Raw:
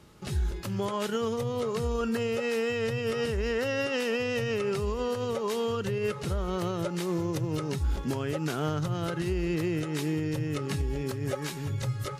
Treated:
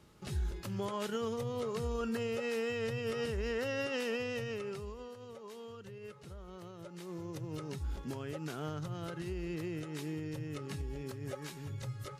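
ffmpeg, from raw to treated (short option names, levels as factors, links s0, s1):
-af "volume=1.26,afade=t=out:st=4.09:d=1.03:silence=0.251189,afade=t=in:st=6.78:d=0.84:silence=0.375837"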